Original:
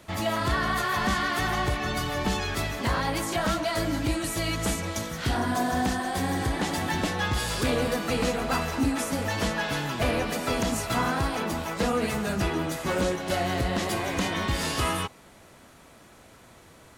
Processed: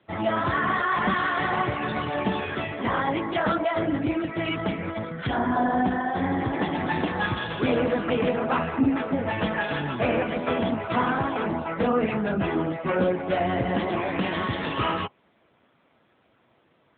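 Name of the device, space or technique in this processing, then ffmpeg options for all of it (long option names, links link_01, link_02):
mobile call with aggressive noise cancelling: -af "highpass=frequency=120:poles=1,afftdn=noise_reduction=13:noise_floor=-35,volume=4.5dB" -ar 8000 -c:a libopencore_amrnb -b:a 7950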